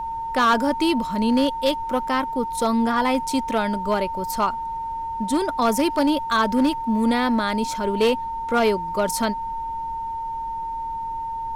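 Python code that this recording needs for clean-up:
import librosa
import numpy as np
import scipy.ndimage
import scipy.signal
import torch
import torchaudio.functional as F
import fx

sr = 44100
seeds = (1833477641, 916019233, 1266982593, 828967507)

y = fx.fix_declip(x, sr, threshold_db=-13.0)
y = fx.notch(y, sr, hz=910.0, q=30.0)
y = fx.noise_reduce(y, sr, print_start_s=4.56, print_end_s=5.06, reduce_db=30.0)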